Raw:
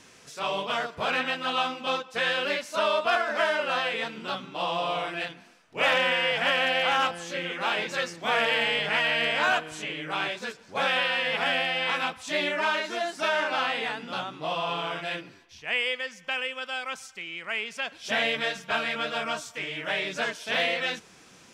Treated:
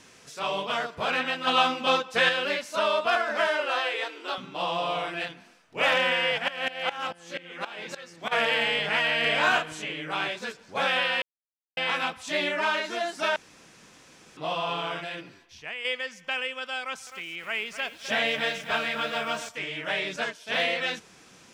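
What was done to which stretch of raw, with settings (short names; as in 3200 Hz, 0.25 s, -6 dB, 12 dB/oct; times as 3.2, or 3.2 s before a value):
1.47–2.29 gain +5 dB
3.47–4.38 brick-wall FIR high-pass 260 Hz
6.37–8.31 dB-ramp tremolo swelling 5.4 Hz -> 2.8 Hz, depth 19 dB
9.21–9.73 doubler 33 ms -3 dB
11.22–11.77 mute
13.36–14.37 room tone
15–15.85 compressor, threshold -31 dBFS
16.81–19.49 lo-fi delay 0.257 s, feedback 35%, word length 8-bit, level -10 dB
20.16–20.59 upward expander, over -39 dBFS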